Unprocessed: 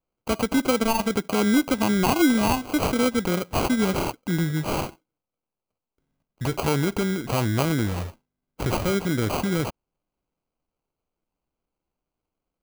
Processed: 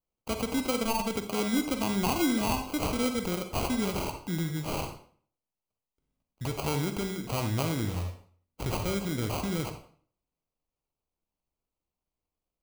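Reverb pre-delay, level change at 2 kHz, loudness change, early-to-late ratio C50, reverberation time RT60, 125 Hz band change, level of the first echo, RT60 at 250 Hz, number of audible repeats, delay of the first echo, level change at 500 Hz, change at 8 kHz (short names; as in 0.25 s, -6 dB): 40 ms, -8.0 dB, -7.0 dB, 8.0 dB, 0.50 s, -6.0 dB, none, 0.55 s, none, none, -7.5 dB, -4.5 dB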